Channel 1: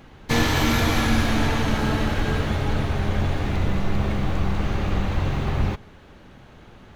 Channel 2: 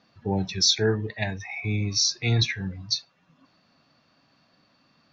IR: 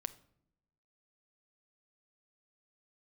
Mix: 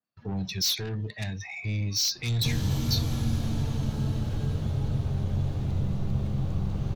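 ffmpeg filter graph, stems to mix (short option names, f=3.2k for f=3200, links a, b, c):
-filter_complex "[0:a]equalizer=f=125:t=o:w=1:g=11,equalizer=f=500:t=o:w=1:g=4,equalizer=f=2k:t=o:w=1:g=-8,adelay=2150,volume=-9.5dB[a];[1:a]agate=range=-31dB:threshold=-52dB:ratio=16:detection=peak,adynamicequalizer=threshold=0.0141:dfrequency=3800:dqfactor=1.4:tfrequency=3800:tqfactor=1.4:attack=5:release=100:ratio=0.375:range=2:mode=boostabove:tftype=bell,asoftclip=type=tanh:threshold=-23.5dB,volume=1dB[b];[a][b]amix=inputs=2:normalize=0,acrossover=split=230|3000[c][d][e];[d]acompressor=threshold=-43dB:ratio=3[f];[c][f][e]amix=inputs=3:normalize=0"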